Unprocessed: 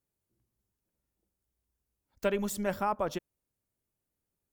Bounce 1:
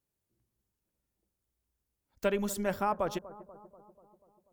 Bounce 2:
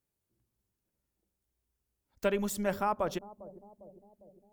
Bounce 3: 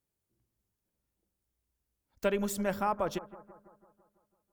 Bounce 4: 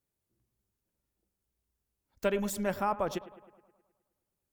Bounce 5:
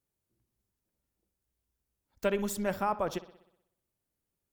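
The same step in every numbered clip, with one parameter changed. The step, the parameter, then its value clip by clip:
bucket-brigade delay, delay time: 243, 402, 166, 105, 62 milliseconds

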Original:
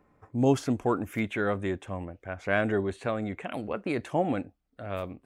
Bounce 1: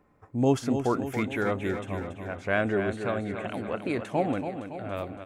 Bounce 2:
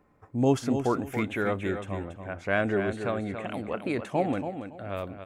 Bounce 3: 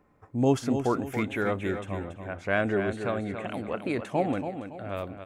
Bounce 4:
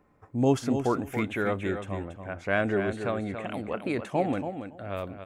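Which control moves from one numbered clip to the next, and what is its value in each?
repeating echo, feedback: 58, 23, 37, 15%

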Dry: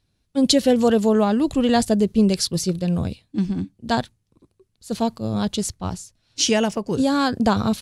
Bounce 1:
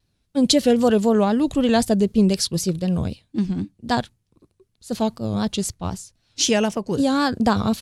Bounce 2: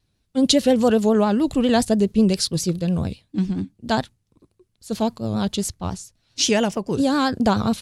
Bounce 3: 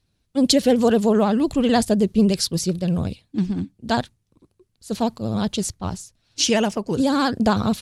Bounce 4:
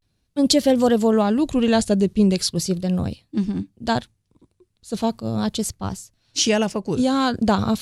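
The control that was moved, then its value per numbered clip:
pitch vibrato, speed: 3.9, 7.3, 16, 0.39 Hertz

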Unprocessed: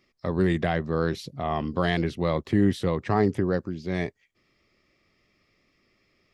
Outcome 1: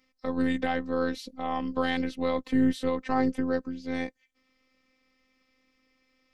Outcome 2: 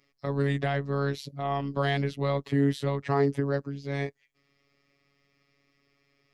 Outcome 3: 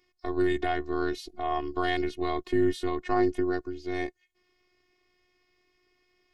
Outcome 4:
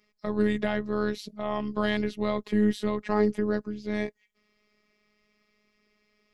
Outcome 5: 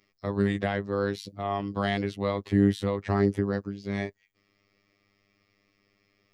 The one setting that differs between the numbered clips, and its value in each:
phases set to zero, frequency: 260, 140, 360, 210, 100 Hertz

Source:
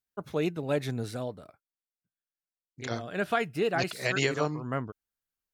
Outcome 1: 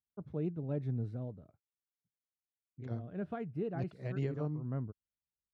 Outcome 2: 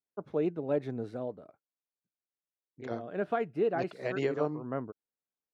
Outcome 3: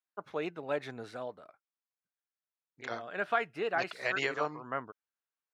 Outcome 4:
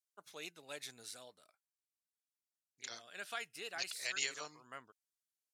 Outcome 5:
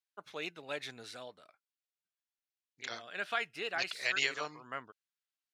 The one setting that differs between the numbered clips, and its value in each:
resonant band-pass, frequency: 100, 410, 1,200, 7,900, 3,100 Hertz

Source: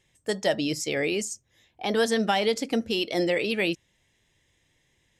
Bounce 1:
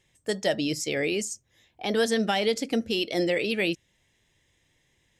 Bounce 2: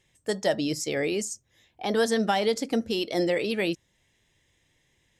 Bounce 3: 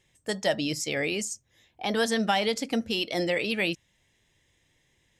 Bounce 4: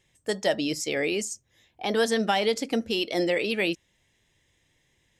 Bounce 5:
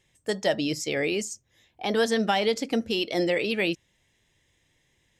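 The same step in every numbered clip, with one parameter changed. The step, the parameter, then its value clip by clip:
dynamic equaliser, frequency: 990, 2,600, 390, 130, 9,700 Hertz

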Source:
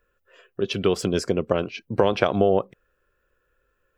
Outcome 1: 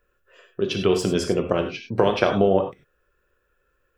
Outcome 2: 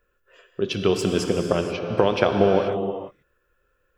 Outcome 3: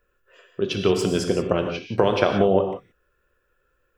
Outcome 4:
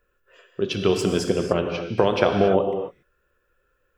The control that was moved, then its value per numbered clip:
reverb whose tail is shaped and stops, gate: 120, 510, 200, 310 milliseconds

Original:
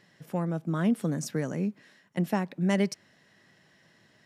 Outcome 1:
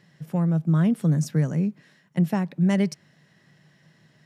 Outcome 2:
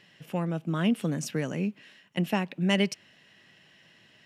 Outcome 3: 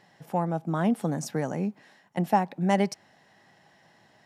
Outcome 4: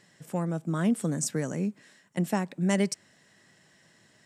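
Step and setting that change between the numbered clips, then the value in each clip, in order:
parametric band, centre frequency: 150, 2,800, 800, 8,000 Hertz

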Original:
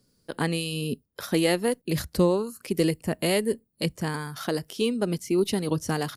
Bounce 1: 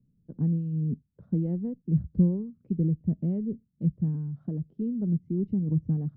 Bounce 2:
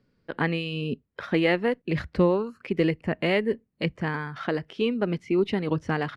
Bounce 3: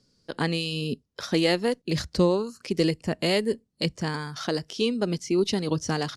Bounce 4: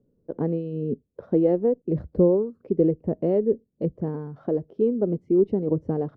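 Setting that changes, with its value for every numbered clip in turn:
low-pass with resonance, frequency: 170, 2,200, 5,700, 480 Hertz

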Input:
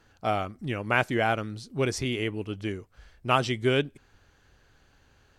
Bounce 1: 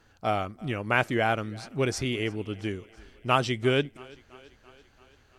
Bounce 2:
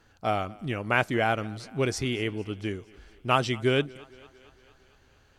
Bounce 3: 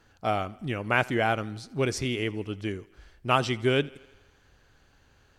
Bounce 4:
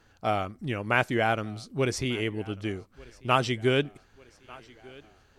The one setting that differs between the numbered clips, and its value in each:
feedback echo with a high-pass in the loop, delay time: 336, 228, 82, 1,193 milliseconds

